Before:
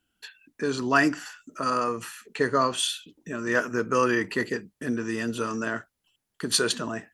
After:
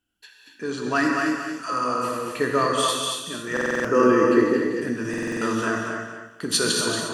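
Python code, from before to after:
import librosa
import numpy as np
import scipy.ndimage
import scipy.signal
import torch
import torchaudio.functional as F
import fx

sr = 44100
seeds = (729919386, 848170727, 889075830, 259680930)

p1 = fx.dispersion(x, sr, late='lows', ms=131.0, hz=790.0, at=(1.23, 2.09))
p2 = fx.high_shelf(p1, sr, hz=5300.0, db=8.5, at=(2.88, 3.38))
p3 = p2 + fx.echo_feedback(p2, sr, ms=230, feedback_pct=25, wet_db=-6.0, dry=0)
p4 = fx.rider(p3, sr, range_db=10, speed_s=2.0)
p5 = fx.curve_eq(p4, sr, hz=(160.0, 300.0, 2600.0), db=(0, 9, -5), at=(3.88, 4.71))
p6 = fx.rev_gated(p5, sr, seeds[0], gate_ms=310, shape='flat', drr_db=0.0)
p7 = fx.buffer_glitch(p6, sr, at_s=(3.52, 5.09), block=2048, repeats=6)
y = F.gain(torch.from_numpy(p7), -2.0).numpy()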